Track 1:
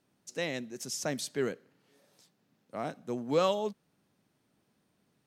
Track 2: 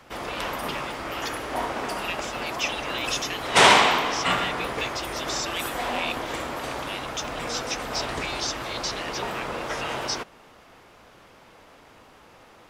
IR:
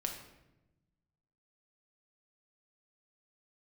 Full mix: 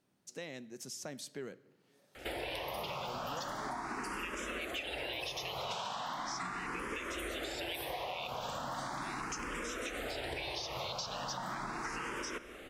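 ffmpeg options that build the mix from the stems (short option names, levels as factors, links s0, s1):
-filter_complex "[0:a]acompressor=threshold=0.00794:ratio=2,volume=0.596,asplit=2[s0][s1];[s1]volume=0.188[s2];[1:a]acompressor=threshold=0.0355:ratio=6,asplit=2[s3][s4];[s4]afreqshift=0.38[s5];[s3][s5]amix=inputs=2:normalize=1,adelay=2150,volume=1.19,asplit=2[s6][s7];[s7]volume=0.355[s8];[2:a]atrim=start_sample=2205[s9];[s2][s8]amix=inputs=2:normalize=0[s10];[s10][s9]afir=irnorm=-1:irlink=0[s11];[s0][s6][s11]amix=inputs=3:normalize=0,acompressor=threshold=0.0141:ratio=6"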